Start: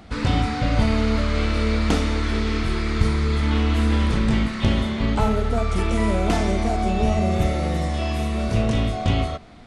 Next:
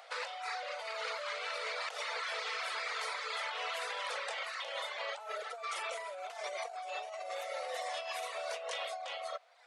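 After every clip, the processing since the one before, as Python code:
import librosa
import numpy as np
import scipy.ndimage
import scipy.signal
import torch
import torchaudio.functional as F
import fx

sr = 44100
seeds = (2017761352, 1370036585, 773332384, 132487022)

y = fx.dereverb_blind(x, sr, rt60_s=0.89)
y = scipy.signal.sosfilt(scipy.signal.cheby1(6, 1.0, 500.0, 'highpass', fs=sr, output='sos'), y)
y = fx.over_compress(y, sr, threshold_db=-35.0, ratio=-1.0)
y = F.gain(torch.from_numpy(y), -5.0).numpy()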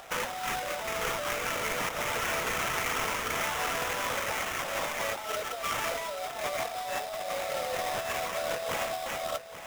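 y = fx.sample_hold(x, sr, seeds[0], rate_hz=4400.0, jitter_pct=20)
y = fx.echo_feedback(y, sr, ms=834, feedback_pct=33, wet_db=-12.5)
y = F.gain(torch.from_numpy(y), 7.0).numpy()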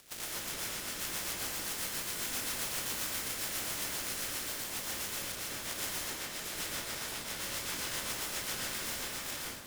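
y = fx.spec_clip(x, sr, under_db=30)
y = fx.rotary(y, sr, hz=7.5)
y = fx.rev_plate(y, sr, seeds[1], rt60_s=1.0, hf_ratio=0.6, predelay_ms=105, drr_db=-4.5)
y = F.gain(torch.from_numpy(y), -7.0).numpy()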